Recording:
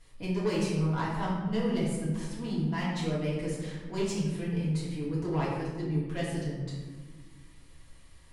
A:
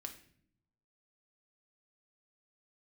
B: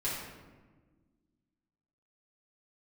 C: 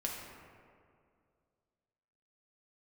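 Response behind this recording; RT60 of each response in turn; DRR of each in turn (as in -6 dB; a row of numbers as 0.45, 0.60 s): B; not exponential, 1.4 s, 2.3 s; 3.5, -9.0, -2.0 dB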